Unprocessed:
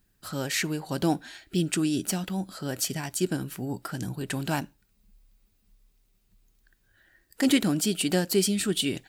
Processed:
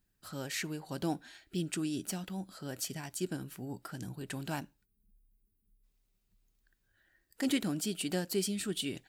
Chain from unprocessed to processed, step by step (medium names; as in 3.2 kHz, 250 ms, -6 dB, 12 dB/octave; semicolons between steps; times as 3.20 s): time-frequency box 4.85–5.83 s, 470–9000 Hz -16 dB; trim -9 dB